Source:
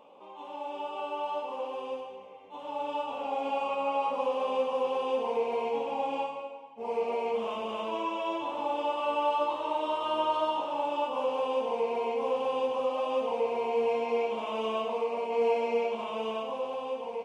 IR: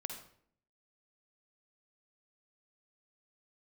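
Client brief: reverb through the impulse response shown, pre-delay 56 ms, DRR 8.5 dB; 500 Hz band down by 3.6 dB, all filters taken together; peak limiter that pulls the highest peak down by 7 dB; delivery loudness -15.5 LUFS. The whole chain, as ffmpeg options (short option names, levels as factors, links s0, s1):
-filter_complex "[0:a]equalizer=f=500:t=o:g=-4,alimiter=level_in=1.26:limit=0.0631:level=0:latency=1,volume=0.794,asplit=2[s0][s1];[1:a]atrim=start_sample=2205,adelay=56[s2];[s1][s2]afir=irnorm=-1:irlink=0,volume=0.422[s3];[s0][s3]amix=inputs=2:normalize=0,volume=8.91"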